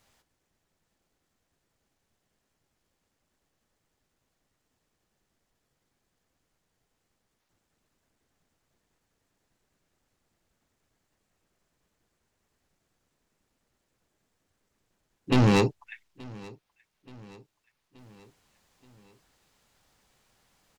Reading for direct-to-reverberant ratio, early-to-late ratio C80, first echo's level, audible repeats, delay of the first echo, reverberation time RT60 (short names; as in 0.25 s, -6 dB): none, none, -22.5 dB, 3, 0.877 s, none